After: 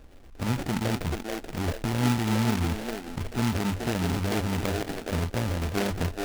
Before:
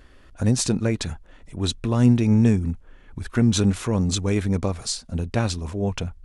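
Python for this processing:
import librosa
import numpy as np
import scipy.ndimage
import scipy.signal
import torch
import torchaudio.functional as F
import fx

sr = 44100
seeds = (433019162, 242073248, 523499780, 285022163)

p1 = fx.high_shelf(x, sr, hz=2400.0, db=-9.0)
p2 = fx.over_compress(p1, sr, threshold_db=-26.0, ratio=-0.5)
p3 = p1 + F.gain(torch.from_numpy(p2), 0.5).numpy()
p4 = fx.peak_eq(p3, sr, hz=5900.0, db=-12.0, octaves=0.25)
p5 = fx.echo_stepped(p4, sr, ms=432, hz=410.0, octaves=0.7, feedback_pct=70, wet_db=0)
p6 = fx.sample_hold(p5, sr, seeds[0], rate_hz=1100.0, jitter_pct=0)
p7 = fx.hum_notches(p6, sr, base_hz=50, count=2)
p8 = fx.noise_mod_delay(p7, sr, seeds[1], noise_hz=1500.0, depth_ms=0.11)
y = F.gain(torch.from_numpy(p8), -8.5).numpy()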